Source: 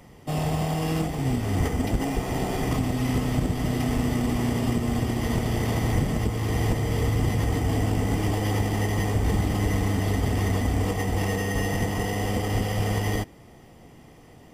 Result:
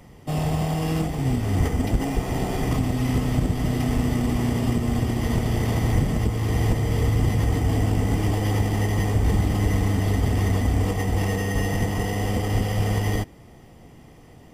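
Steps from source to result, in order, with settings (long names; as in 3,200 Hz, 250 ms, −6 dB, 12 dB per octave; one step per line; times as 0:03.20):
low-shelf EQ 160 Hz +4.5 dB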